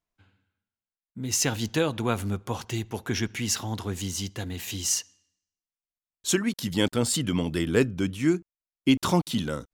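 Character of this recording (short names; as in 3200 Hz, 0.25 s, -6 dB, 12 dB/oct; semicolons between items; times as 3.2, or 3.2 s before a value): noise floor -96 dBFS; spectral tilt -4.0 dB/oct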